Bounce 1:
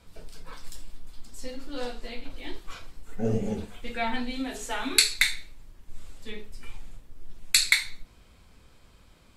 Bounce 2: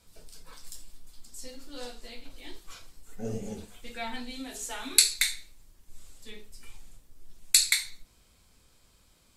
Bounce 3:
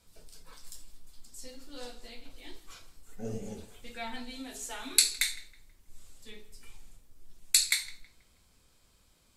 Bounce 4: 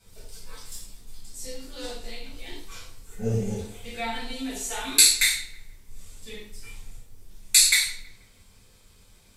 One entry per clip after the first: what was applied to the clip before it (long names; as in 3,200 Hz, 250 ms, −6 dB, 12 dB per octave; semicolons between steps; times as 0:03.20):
bass and treble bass −1 dB, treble +11 dB; level −7.5 dB
feedback echo with a low-pass in the loop 161 ms, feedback 37%, low-pass 3,000 Hz, level −17.5 dB; level −3 dB
reverb whose tail is shaped and stops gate 150 ms falling, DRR −8 dB